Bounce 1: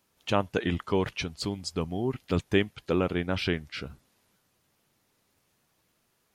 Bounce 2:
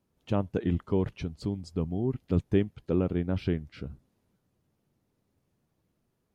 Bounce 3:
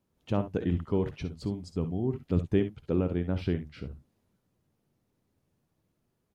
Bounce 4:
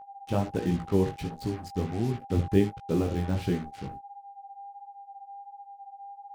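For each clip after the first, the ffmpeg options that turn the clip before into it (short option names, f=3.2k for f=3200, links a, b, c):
-af "tiltshelf=f=660:g=9,volume=-5.5dB"
-af "aecho=1:1:55|68:0.224|0.211,volume=-1dB"
-af "acrusher=bits=6:mix=0:aa=0.5,aeval=exprs='val(0)+0.00631*sin(2*PI*800*n/s)':c=same,flanger=delay=16.5:depth=4.9:speed=1.4,volume=4.5dB"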